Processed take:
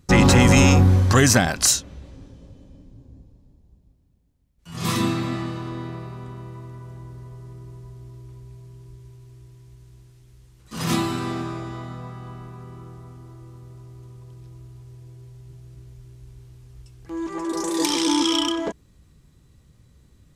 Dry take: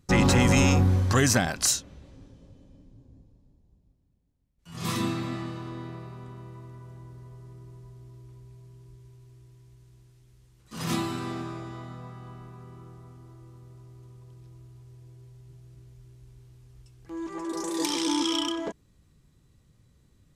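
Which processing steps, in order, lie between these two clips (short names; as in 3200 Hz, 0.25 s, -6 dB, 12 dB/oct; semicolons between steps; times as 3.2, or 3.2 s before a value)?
bell 63 Hz +4.5 dB 0.41 oct; gain +6 dB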